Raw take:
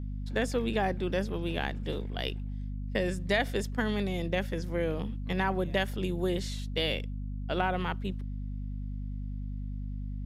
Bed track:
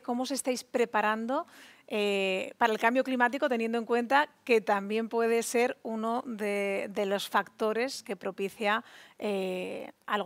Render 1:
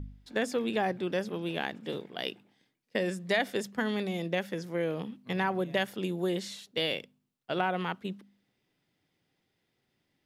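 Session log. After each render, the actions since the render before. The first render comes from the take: de-hum 50 Hz, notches 5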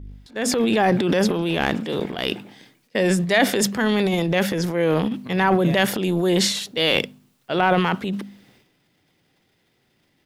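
transient shaper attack -5 dB, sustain +11 dB; level rider gain up to 11.5 dB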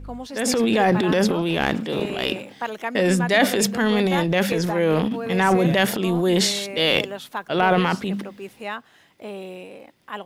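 add bed track -3 dB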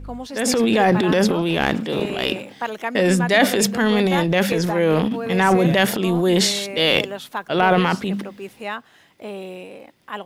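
trim +2 dB

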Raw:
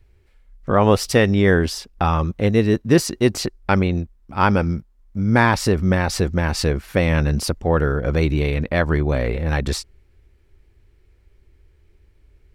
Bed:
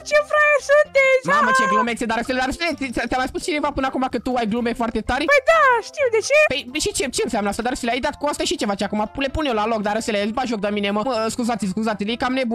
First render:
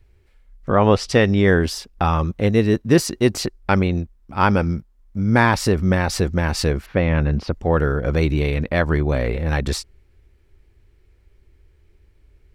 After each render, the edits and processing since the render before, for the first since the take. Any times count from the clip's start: 0.70–1.59 s: low-pass 4.2 kHz -> 10 kHz; 6.86–7.53 s: distance through air 260 m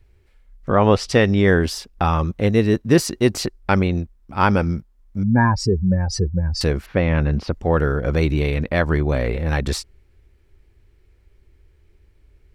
5.23–6.61 s: spectral contrast enhancement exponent 2.4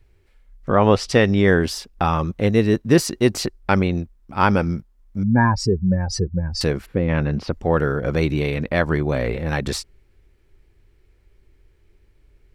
6.85–7.09 s: time-frequency box 530–6900 Hz -11 dB; peaking EQ 70 Hz -9.5 dB 0.43 oct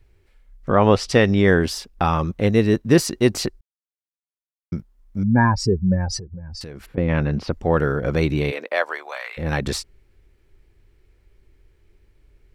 3.61–4.72 s: mute; 6.17–6.98 s: compression 12:1, threshold -31 dBFS; 8.50–9.37 s: high-pass 330 Hz -> 1.1 kHz 24 dB/octave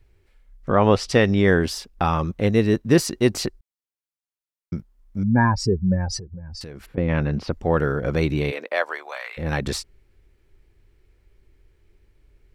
trim -1.5 dB

